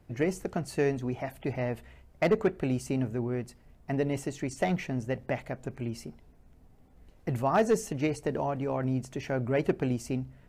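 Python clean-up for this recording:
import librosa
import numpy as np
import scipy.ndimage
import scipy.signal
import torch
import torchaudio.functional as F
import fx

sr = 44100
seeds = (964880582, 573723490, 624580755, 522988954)

y = fx.fix_declip(x, sr, threshold_db=-17.0)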